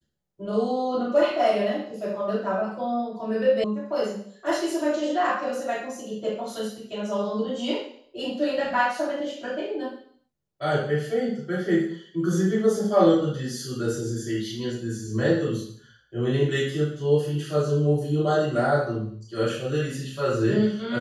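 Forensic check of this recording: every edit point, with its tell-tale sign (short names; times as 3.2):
3.64 sound cut off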